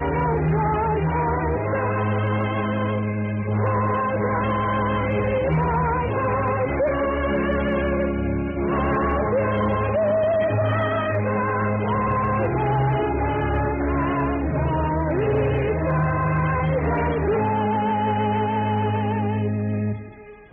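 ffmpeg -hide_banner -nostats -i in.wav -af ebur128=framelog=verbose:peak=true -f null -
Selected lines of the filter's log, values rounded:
Integrated loudness:
  I:         -22.3 LUFS
  Threshold: -32.4 LUFS
Loudness range:
  LRA:         1.3 LU
  Threshold: -42.3 LUFS
  LRA low:   -23.0 LUFS
  LRA high:  -21.6 LUFS
True peak:
  Peak:      -13.1 dBFS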